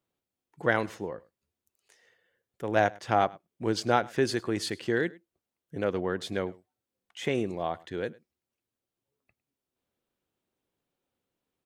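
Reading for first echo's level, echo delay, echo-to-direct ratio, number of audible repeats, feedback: -23.0 dB, 0.104 s, -23.0 dB, 1, no steady repeat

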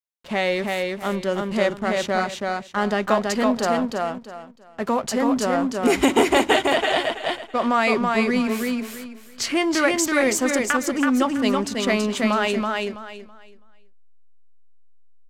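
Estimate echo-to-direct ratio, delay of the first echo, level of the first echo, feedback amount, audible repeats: -2.5 dB, 0.328 s, -3.0 dB, 25%, 3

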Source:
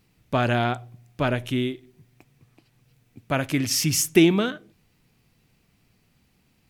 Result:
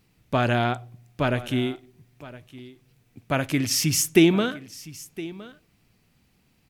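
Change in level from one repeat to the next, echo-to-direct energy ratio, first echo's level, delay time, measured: no steady repeat, -18.0 dB, -18.0 dB, 1.014 s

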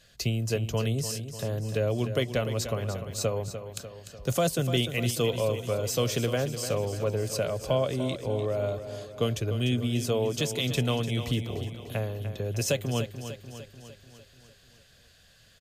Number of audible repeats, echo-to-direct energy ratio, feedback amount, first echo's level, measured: 6, -9.0 dB, 57%, -10.5 dB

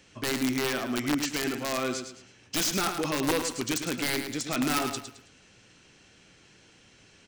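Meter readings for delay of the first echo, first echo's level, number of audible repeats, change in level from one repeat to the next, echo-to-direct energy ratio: 0.108 s, -8.0 dB, 3, -10.0 dB, -7.5 dB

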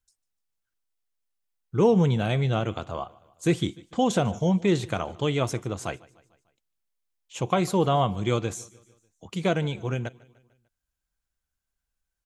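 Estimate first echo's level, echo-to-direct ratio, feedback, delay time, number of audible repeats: -23.0 dB, -21.5 dB, 53%, 0.149 s, 3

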